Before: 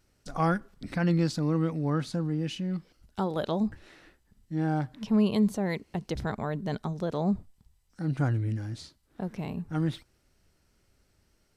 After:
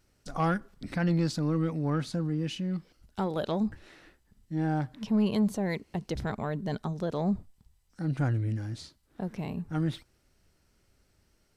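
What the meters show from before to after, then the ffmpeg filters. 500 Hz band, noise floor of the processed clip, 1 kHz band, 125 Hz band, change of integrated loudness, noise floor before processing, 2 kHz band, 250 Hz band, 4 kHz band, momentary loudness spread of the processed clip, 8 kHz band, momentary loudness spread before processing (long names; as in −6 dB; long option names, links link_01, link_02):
−1.5 dB, −70 dBFS, −1.5 dB, −1.0 dB, −1.0 dB, −70 dBFS, −1.0 dB, −1.0 dB, −0.5 dB, 10 LU, 0.0 dB, 11 LU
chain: -af "asoftclip=type=tanh:threshold=-18dB"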